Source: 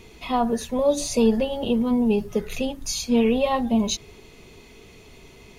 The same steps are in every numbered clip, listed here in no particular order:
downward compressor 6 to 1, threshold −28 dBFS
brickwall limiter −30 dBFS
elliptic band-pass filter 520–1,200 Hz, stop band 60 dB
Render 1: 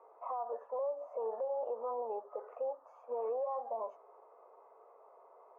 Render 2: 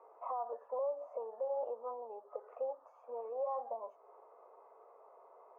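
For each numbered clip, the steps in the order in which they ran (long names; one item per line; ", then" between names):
elliptic band-pass filter, then downward compressor, then brickwall limiter
downward compressor, then elliptic band-pass filter, then brickwall limiter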